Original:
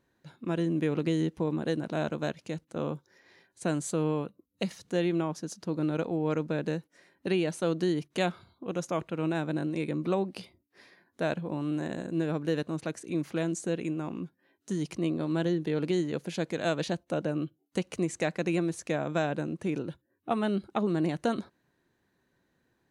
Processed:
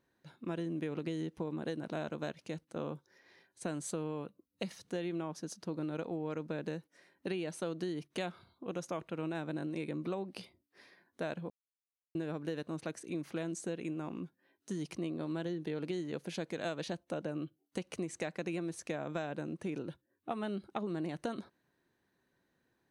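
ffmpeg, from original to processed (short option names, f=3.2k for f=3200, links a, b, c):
-filter_complex "[0:a]asplit=3[a][b][c];[a]atrim=end=11.5,asetpts=PTS-STARTPTS,afade=t=out:st=11.496:d=0.004:c=hsin[d];[b]atrim=start=11.5:end=12.15,asetpts=PTS-STARTPTS,volume=0[e];[c]atrim=start=12.15,asetpts=PTS-STARTPTS,afade=t=in:d=0.004:c=hsin[f];[d][e][f]concat=n=3:v=0:a=1,lowshelf=f=150:g=-4.5,bandreject=f=7.1k:w=13,acompressor=threshold=-30dB:ratio=6,volume=-3.5dB"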